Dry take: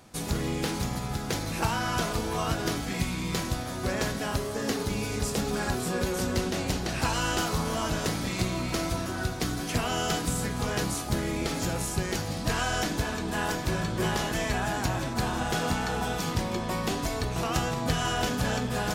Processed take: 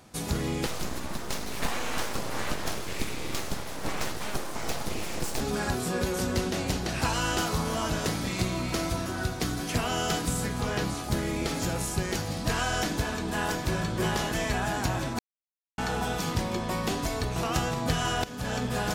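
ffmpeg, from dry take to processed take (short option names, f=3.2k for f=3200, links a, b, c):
-filter_complex "[0:a]asettb=1/sr,asplit=3[a][b][c];[a]atrim=end=0.664[d];[b]atrim=start=0.66:end=5.41,asetpts=PTS-STARTPTS,afade=t=in:d=0.004:c=qsin,afade=t=out:st=4.746:d=0.004:c=qsin,aeval=exprs='abs(val(0))':c=same[e];[c]atrim=start=5.406[f];[d][e]acrossfade=d=0.004:c1=hsin:c2=qsin[g];[g][f]acrossfade=d=0.004:c1=qsin:c2=hsin,asettb=1/sr,asplit=3[h][i][j];[h]atrim=end=10.604[k];[i]atrim=start=10.6:end=11.04,asetpts=PTS-STARTPTS,afade=t=in:d=0.004:c=qsin,afade=t=out:st=0.436:d=0.004:c=qsin,acrossover=split=5000[l][m];[m]acompressor=threshold=-43dB:ratio=4:attack=1:release=60[n];[l][n]amix=inputs=2:normalize=0[o];[j]atrim=start=11.036[p];[k][o]acrossfade=d=0.004:c1=hsin:c2=qsin[q];[q][p]acrossfade=d=0.004:c1=qsin:c2=hsin,asplit=4[r][s][t][u];[r]atrim=end=15.19,asetpts=PTS-STARTPTS,afade=t=out:st=15.186:d=0.004:c=hsin[v];[s]atrim=start=15.19:end=15.78,asetpts=PTS-STARTPTS,volume=0[w];[t]atrim=start=15.78:end=18.24,asetpts=PTS-STARTPTS,afade=t=in:d=0.004:c=hsin,afade=t=out:st=2.456:d=0.004:c=hsin:silence=0.133352[x];[u]atrim=start=18.24,asetpts=PTS-STARTPTS,afade=t=in:d=0.4:silence=0.133352[y];[v][w][x][y]concat=n=4:v=0:a=1"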